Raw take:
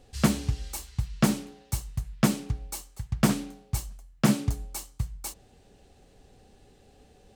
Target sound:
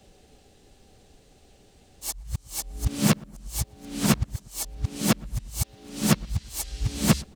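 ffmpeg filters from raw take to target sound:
-filter_complex "[0:a]areverse,asplit=2[s0][s1];[s1]adelay=119,lowpass=f=1300:p=1,volume=0.0708,asplit=2[s2][s3];[s3]adelay=119,lowpass=f=1300:p=1,volume=0.52,asplit=2[s4][s5];[s5]adelay=119,lowpass=f=1300:p=1,volume=0.52[s6];[s0][s2][s4][s6]amix=inputs=4:normalize=0,acrossover=split=250|910|2900[s7][s8][s9][s10];[s8]acrusher=bits=3:mode=log:mix=0:aa=0.000001[s11];[s10]acontrast=23[s12];[s7][s11][s9][s12]amix=inputs=4:normalize=0,asplit=2[s13][s14];[s14]asetrate=35002,aresample=44100,atempo=1.25992,volume=0.447[s15];[s13][s15]amix=inputs=2:normalize=0"

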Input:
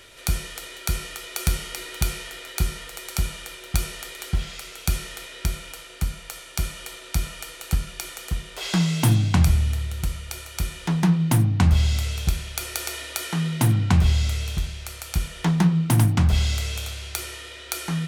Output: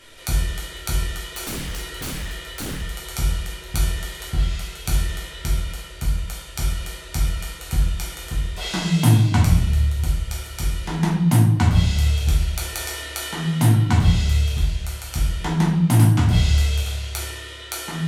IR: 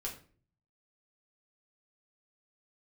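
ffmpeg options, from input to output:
-filter_complex "[1:a]atrim=start_sample=2205,asetrate=27783,aresample=44100[s0];[0:a][s0]afir=irnorm=-1:irlink=0,asettb=1/sr,asplit=3[s1][s2][s3];[s1]atrim=end=1.344[s4];[s2]atrim=start=1.34:end=2.82,asetpts=PTS-STARTPTS,afade=t=in:d=0.004:c=qsin,afade=t=out:st=1.476:d=0.004:c=qsin,aeval=exprs='0.075*(abs(mod(val(0)/0.075+3,4)-2)-1)':c=same[s5];[s3]atrim=start=2.816[s6];[s4][s5]acrossfade=d=0.004:c1=hsin:c2=qsin[s7];[s7][s6]acrossfade=d=0.004:c1=qsin:c2=hsin,volume=0.891"

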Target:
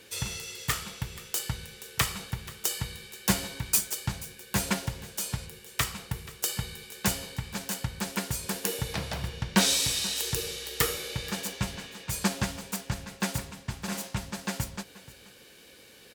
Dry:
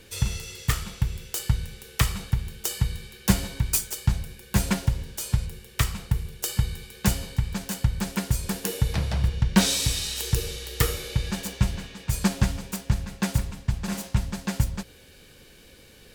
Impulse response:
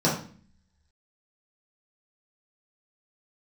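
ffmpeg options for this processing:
-filter_complex "[0:a]highpass=f=320:p=1,asplit=2[s0][s1];[s1]aecho=0:1:481:0.112[s2];[s0][s2]amix=inputs=2:normalize=0"

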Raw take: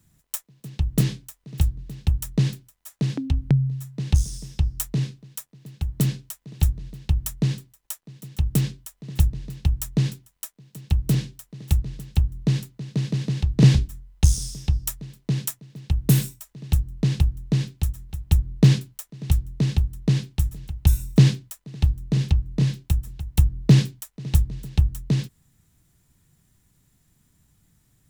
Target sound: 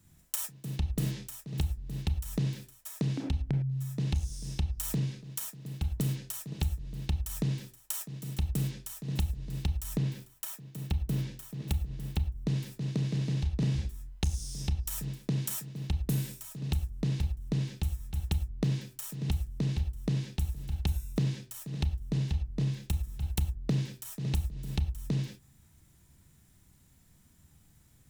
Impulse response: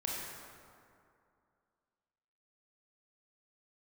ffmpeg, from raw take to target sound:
-filter_complex "[0:a]asettb=1/sr,asplit=3[s0][s1][s2];[s0]atrim=end=9.874[s3];[s1]atrim=start=9.87:end=12.47,asetpts=PTS-STARTPTS,afade=t=in:d=0.004:c=qsin,afade=t=out:st=2.596:d=0.004:c=qsin,equalizer=f=7700:t=o:w=2.1:g=-4.5[s4];[s2]atrim=start=12.466[s5];[s3][s4]acrossfade=d=0.004:c1=hsin:c2=qsin[s6];[s6][s5]acrossfade=d=0.004:c1=qsin:c2=hsin[s7];[1:a]atrim=start_sample=2205,afade=t=out:st=0.16:d=0.01,atrim=end_sample=7497[s8];[s7][s8]afir=irnorm=-1:irlink=0,acompressor=threshold=0.0398:ratio=6"

